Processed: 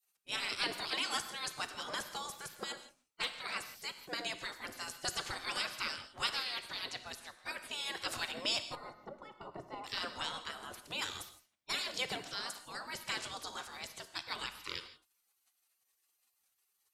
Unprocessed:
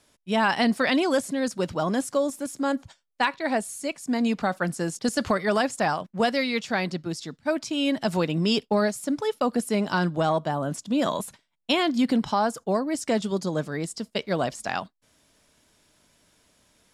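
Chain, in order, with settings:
gate on every frequency bin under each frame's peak −20 dB weak
0:08.75–0:09.84: Savitzky-Golay smoothing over 65 samples
convolution reverb, pre-delay 3 ms, DRR 9.5 dB

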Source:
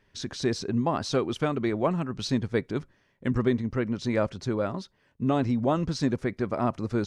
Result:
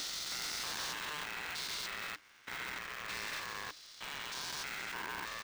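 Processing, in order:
spectrum averaged block by block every 400 ms
Butterworth high-pass 1,400 Hz 36 dB per octave
tempo change 1.3×
tube saturation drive 46 dB, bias 0.45
ring modulator with a square carrier 300 Hz
level +11.5 dB

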